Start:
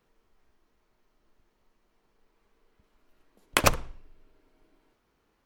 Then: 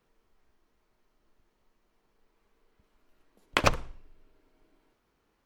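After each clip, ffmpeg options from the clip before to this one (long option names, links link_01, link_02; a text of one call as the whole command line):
ffmpeg -i in.wav -filter_complex "[0:a]acrossover=split=5900[link_01][link_02];[link_02]acompressor=threshold=-40dB:ratio=4:attack=1:release=60[link_03];[link_01][link_03]amix=inputs=2:normalize=0,volume=-1.5dB" out.wav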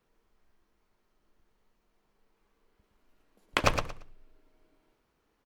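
ffmpeg -i in.wav -af "aecho=1:1:115|230|345:0.473|0.0946|0.0189,volume=-2dB" out.wav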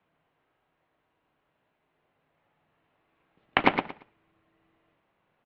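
ffmpeg -i in.wav -af "highpass=frequency=490:width_type=q:width=0.5412,highpass=frequency=490:width_type=q:width=1.307,lowpass=frequency=3600:width_type=q:width=0.5176,lowpass=frequency=3600:width_type=q:width=0.7071,lowpass=frequency=3600:width_type=q:width=1.932,afreqshift=-300,volume=5dB" out.wav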